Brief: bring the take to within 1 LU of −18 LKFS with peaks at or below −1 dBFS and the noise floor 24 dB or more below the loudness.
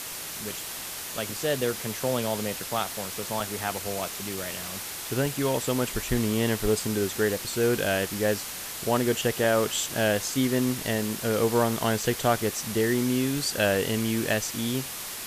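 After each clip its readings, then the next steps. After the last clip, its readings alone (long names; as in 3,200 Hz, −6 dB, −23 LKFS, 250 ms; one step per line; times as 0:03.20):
number of dropouts 5; longest dropout 2.4 ms; background noise floor −37 dBFS; target noise floor −51 dBFS; integrated loudness −27.0 LKFS; sample peak −11.0 dBFS; target loudness −18.0 LKFS
→ repair the gap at 0:03.40/0:04.37/0:05.26/0:09.44/0:12.02, 2.4 ms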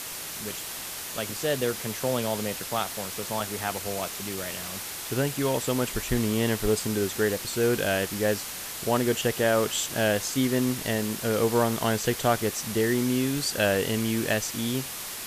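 number of dropouts 0; background noise floor −37 dBFS; target noise floor −51 dBFS
→ broadband denoise 14 dB, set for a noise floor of −37 dBFS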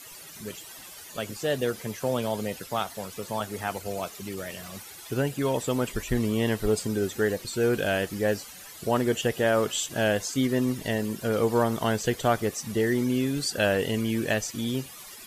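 background noise floor −45 dBFS; target noise floor −52 dBFS
→ broadband denoise 7 dB, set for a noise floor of −45 dBFS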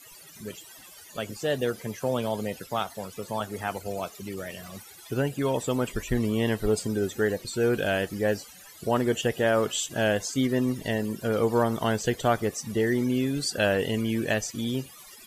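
background noise floor −49 dBFS; target noise floor −52 dBFS
→ broadband denoise 6 dB, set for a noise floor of −49 dBFS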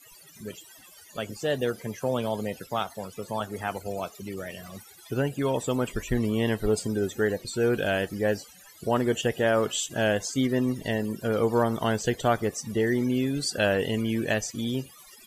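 background noise floor −52 dBFS; integrated loudness −27.5 LKFS; sample peak −11.5 dBFS; target loudness −18.0 LKFS
→ level +9.5 dB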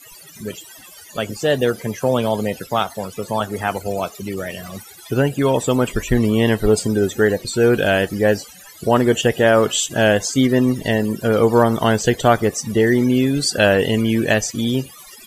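integrated loudness −18.0 LKFS; sample peak −2.0 dBFS; background noise floor −42 dBFS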